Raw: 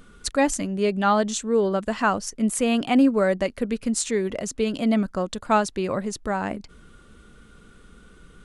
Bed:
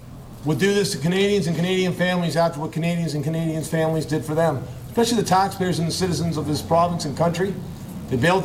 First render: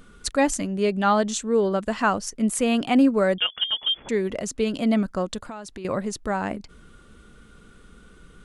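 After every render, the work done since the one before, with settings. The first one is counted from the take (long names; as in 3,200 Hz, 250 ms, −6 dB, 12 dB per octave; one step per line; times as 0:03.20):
0:03.38–0:04.09: voice inversion scrambler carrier 3,400 Hz
0:05.44–0:05.85: downward compressor 10 to 1, threshold −33 dBFS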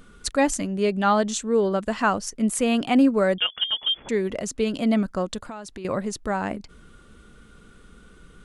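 no processing that can be heard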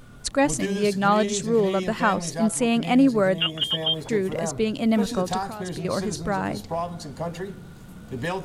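mix in bed −10.5 dB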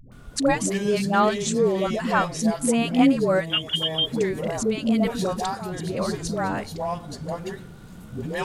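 all-pass dispersion highs, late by 120 ms, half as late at 440 Hz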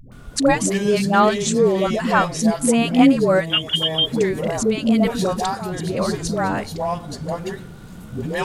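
level +4.5 dB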